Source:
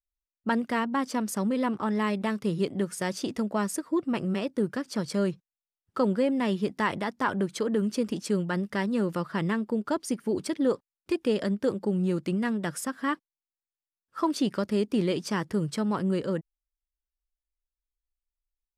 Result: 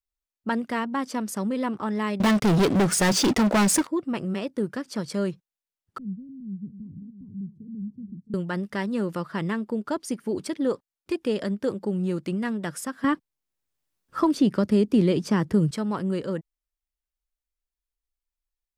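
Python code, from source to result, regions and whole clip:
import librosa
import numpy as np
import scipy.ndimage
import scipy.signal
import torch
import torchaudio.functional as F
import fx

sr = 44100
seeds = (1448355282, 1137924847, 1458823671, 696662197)

y = fx.chain(x, sr, fx.lowpass(hz=9200.0, slope=12),
    fx.leveller(passes=5), at=(2.2, 3.87))
y = fx.chain(y, sr, fx.cheby2_lowpass(hz=620.0, order=4, stop_db=60),
    fx.echo_single(ms=665, db=-12.5), at=(5.98, 8.34))
y = fx.chain(y, sr, fx.low_shelf(hz=390.0, db=9.5),
    fx.band_squash(depth_pct=40), at=(13.04, 15.71))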